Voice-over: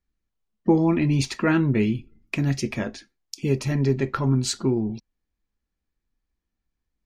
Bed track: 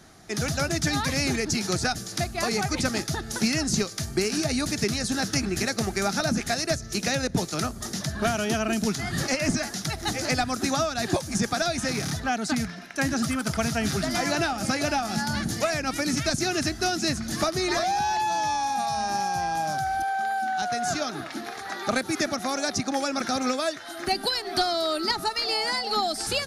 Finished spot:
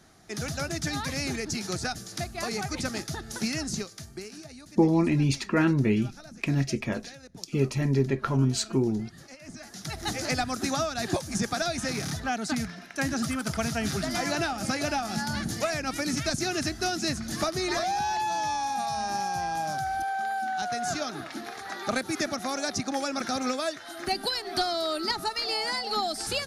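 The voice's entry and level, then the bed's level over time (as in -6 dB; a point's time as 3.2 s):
4.10 s, -2.5 dB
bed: 3.63 s -5.5 dB
4.63 s -21.5 dB
9.43 s -21.5 dB
9.98 s -3 dB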